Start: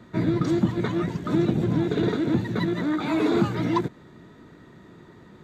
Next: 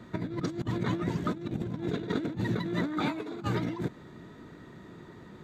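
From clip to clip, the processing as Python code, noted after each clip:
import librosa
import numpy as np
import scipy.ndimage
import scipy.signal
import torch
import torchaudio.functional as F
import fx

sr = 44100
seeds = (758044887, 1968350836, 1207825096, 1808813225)

y = fx.over_compress(x, sr, threshold_db=-27.0, ratio=-0.5)
y = y * librosa.db_to_amplitude(-4.0)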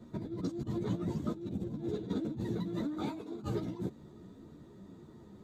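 y = fx.peak_eq(x, sr, hz=1900.0, db=-14.0, octaves=1.8)
y = fx.ensemble(y, sr)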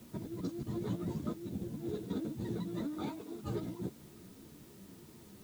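y = fx.quant_dither(x, sr, seeds[0], bits=10, dither='triangular')
y = y * librosa.db_to_amplitude(-2.5)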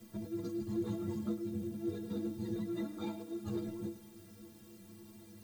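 y = fx.stiff_resonator(x, sr, f0_hz=100.0, decay_s=0.3, stiffness=0.03)
y = y + 10.0 ** (-14.0 / 20.0) * np.pad(y, (int(105 * sr / 1000.0), 0))[:len(y)]
y = y * librosa.db_to_amplitude(8.0)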